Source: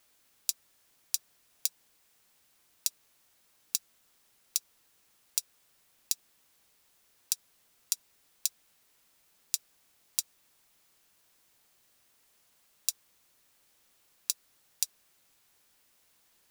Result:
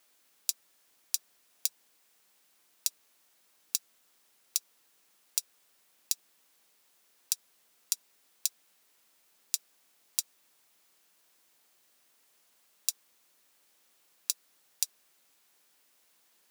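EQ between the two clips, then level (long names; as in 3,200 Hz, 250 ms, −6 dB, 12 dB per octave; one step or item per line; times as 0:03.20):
high-pass filter 210 Hz 12 dB per octave
0.0 dB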